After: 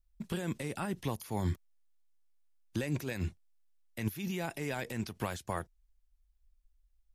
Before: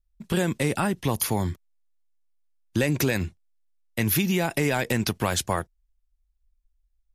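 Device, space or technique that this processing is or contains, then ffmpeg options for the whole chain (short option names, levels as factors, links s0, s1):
de-esser from a sidechain: -filter_complex "[0:a]asplit=2[s0][s1];[s1]highpass=f=4900:w=0.5412,highpass=f=4900:w=1.3066,apad=whole_len=314876[s2];[s0][s2]sidechaincompress=threshold=0.002:ratio=3:attack=4:release=72"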